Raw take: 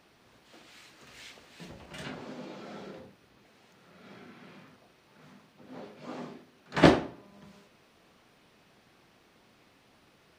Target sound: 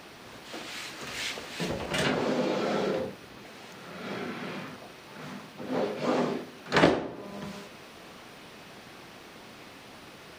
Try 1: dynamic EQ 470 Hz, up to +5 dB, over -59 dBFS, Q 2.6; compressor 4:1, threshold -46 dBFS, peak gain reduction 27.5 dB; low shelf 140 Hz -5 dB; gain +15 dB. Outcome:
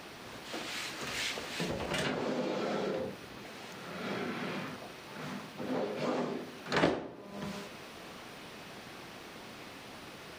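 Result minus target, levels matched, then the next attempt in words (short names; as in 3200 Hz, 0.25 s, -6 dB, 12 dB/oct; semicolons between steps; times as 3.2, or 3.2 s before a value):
compressor: peak gain reduction +7 dB
dynamic EQ 470 Hz, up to +5 dB, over -59 dBFS, Q 2.6; compressor 4:1, threshold -36.5 dBFS, peak gain reduction 20.5 dB; low shelf 140 Hz -5 dB; gain +15 dB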